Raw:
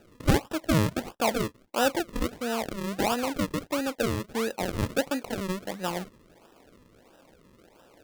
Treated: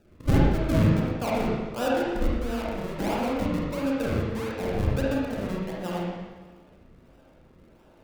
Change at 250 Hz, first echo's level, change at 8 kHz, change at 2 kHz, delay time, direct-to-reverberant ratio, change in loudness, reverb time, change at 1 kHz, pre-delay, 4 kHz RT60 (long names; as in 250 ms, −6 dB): +3.0 dB, no echo audible, −8.5 dB, −2.0 dB, no echo audible, −5.5 dB, +2.0 dB, 1.3 s, −1.0 dB, 37 ms, 1.3 s